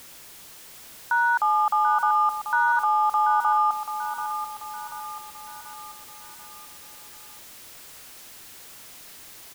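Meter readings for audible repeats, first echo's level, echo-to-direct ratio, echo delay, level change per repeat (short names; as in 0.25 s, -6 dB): 5, -9.5 dB, -8.5 dB, 0.736 s, -6.5 dB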